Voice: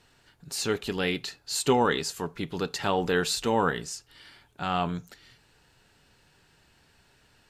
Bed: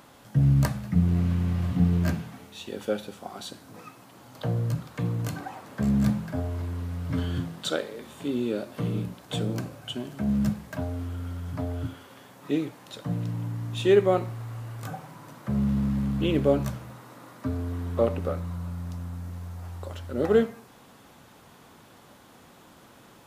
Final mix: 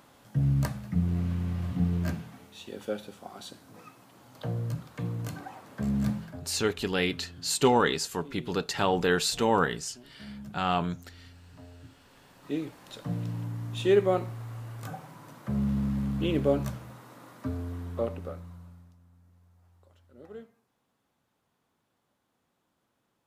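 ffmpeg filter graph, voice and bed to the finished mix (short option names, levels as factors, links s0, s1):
-filter_complex "[0:a]adelay=5950,volume=1.06[s0];[1:a]volume=3.35,afade=t=out:st=6.16:d=0.3:silence=0.211349,afade=t=in:st=11.83:d=1.04:silence=0.16788,afade=t=out:st=17.39:d=1.56:silence=0.0891251[s1];[s0][s1]amix=inputs=2:normalize=0"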